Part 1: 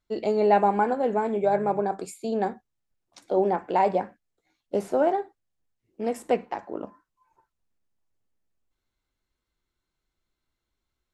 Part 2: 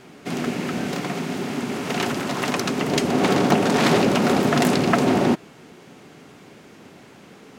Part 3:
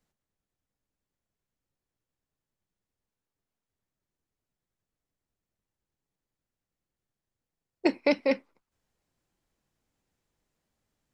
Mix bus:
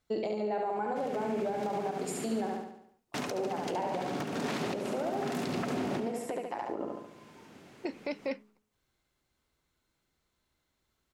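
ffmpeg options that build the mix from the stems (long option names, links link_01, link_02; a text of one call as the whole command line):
ffmpeg -i stem1.wav -i stem2.wav -i stem3.wav -filter_complex "[0:a]acompressor=threshold=-30dB:ratio=10,highpass=57,bandreject=frequency=50:width_type=h:width=6,bandreject=frequency=100:width_type=h:width=6,bandreject=frequency=150:width_type=h:width=6,bandreject=frequency=200:width_type=h:width=6,bandreject=frequency=250:width_type=h:width=6,bandreject=frequency=300:width_type=h:width=6,bandreject=frequency=350:width_type=h:width=6,bandreject=frequency=400:width_type=h:width=6,bandreject=frequency=450:width_type=h:width=6,bandreject=frequency=500:width_type=h:width=6,volume=2.5dB,asplit=3[link_01][link_02][link_03];[link_02]volume=-4dB[link_04];[1:a]alimiter=limit=-9dB:level=0:latency=1:release=465,adelay=700,volume=-8.5dB,asplit=3[link_05][link_06][link_07];[link_05]atrim=end=2.5,asetpts=PTS-STARTPTS,afade=type=out:start_time=2.496:duration=0.004:curve=hsin[link_08];[link_06]atrim=start=2.5:end=3.14,asetpts=PTS-STARTPTS,volume=0[link_09];[link_07]atrim=start=3.14,asetpts=PTS-STARTPTS,afade=type=in:duration=0.004:curve=hsin[link_10];[link_08][link_09][link_10]concat=n=3:v=0:a=1,asplit=2[link_11][link_12];[link_12]volume=-11.5dB[link_13];[2:a]bandreject=frequency=211.6:width_type=h:width=4,bandreject=frequency=423.2:width_type=h:width=4,volume=-3.5dB[link_14];[link_03]apad=whole_len=365449[link_15];[link_11][link_15]sidechaincompress=threshold=-37dB:ratio=8:attack=21:release=638[link_16];[link_04][link_13]amix=inputs=2:normalize=0,aecho=0:1:71|142|213|284|355|426|497:1|0.51|0.26|0.133|0.0677|0.0345|0.0176[link_17];[link_01][link_16][link_14][link_17]amix=inputs=4:normalize=0,alimiter=limit=-24dB:level=0:latency=1:release=114" out.wav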